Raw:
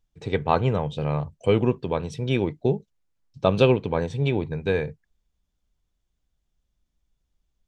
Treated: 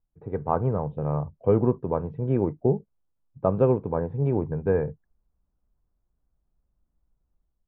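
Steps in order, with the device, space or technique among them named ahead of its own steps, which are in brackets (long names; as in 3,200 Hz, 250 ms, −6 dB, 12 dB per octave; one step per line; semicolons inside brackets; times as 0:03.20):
action camera in a waterproof case (low-pass filter 1,300 Hz 24 dB per octave; automatic gain control gain up to 7 dB; level −5.5 dB; AAC 96 kbit/s 44,100 Hz)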